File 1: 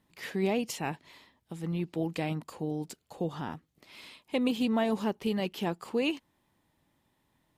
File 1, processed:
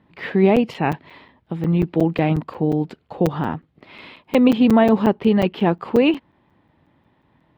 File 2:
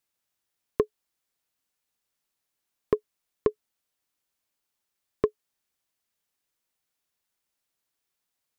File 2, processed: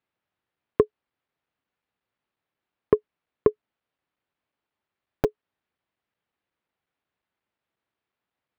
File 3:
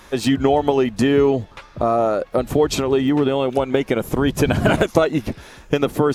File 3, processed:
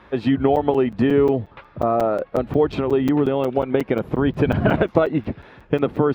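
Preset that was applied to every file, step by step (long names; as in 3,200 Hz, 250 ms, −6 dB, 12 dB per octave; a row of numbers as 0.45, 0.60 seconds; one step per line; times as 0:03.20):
high-pass filter 58 Hz 12 dB per octave
high-frequency loss of the air 410 metres
regular buffer underruns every 0.18 s, samples 256, zero, from 0:00.56
normalise the peak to −3 dBFS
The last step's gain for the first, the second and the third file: +15.0, +6.0, 0.0 decibels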